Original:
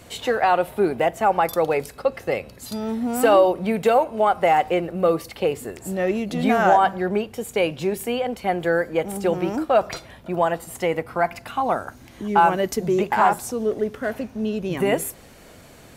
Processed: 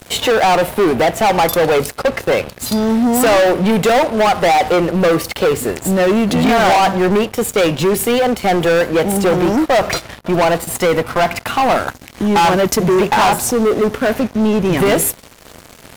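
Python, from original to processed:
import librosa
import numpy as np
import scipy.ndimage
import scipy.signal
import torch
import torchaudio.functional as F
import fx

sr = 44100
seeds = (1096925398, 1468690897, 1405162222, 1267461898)

y = fx.leveller(x, sr, passes=5)
y = y * 10.0 ** (-3.5 / 20.0)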